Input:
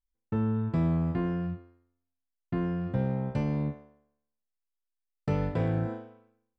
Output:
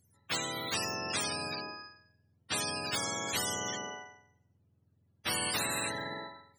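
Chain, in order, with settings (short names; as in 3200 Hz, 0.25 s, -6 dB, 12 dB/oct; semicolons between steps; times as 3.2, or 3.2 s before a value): spectrum mirrored in octaves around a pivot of 660 Hz; spectral compressor 10:1; gain +1.5 dB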